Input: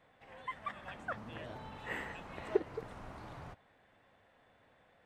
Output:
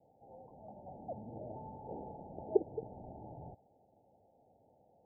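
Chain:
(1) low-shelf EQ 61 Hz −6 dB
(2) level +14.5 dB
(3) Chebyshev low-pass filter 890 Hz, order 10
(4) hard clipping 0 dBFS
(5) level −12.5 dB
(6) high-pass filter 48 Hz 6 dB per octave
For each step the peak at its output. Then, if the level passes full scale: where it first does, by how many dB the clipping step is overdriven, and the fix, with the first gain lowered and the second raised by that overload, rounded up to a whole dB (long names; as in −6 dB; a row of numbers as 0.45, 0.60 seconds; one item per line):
−16.0, −1.5, −2.5, −2.5, −15.0, −15.0 dBFS
no step passes full scale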